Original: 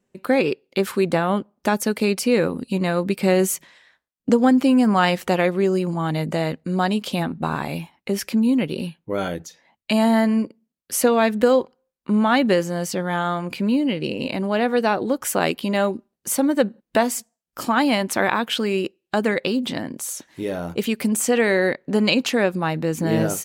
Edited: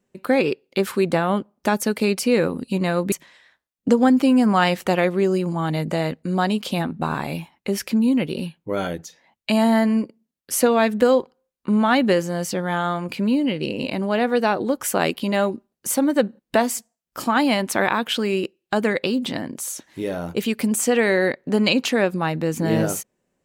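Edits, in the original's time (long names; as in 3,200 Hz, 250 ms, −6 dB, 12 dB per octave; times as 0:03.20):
0:03.12–0:03.53: remove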